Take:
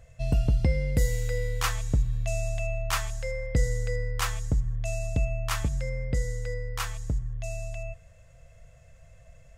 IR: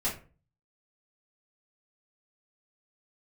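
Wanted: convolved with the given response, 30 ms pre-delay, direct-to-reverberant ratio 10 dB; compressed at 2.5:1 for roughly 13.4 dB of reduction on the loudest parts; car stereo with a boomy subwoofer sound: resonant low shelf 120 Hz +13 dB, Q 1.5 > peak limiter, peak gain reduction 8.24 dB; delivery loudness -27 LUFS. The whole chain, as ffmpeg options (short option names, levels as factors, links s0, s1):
-filter_complex "[0:a]acompressor=threshold=0.01:ratio=2.5,asplit=2[s0][s1];[1:a]atrim=start_sample=2205,adelay=30[s2];[s1][s2]afir=irnorm=-1:irlink=0,volume=0.15[s3];[s0][s3]amix=inputs=2:normalize=0,lowshelf=f=120:t=q:w=1.5:g=13,volume=2,alimiter=limit=0.2:level=0:latency=1"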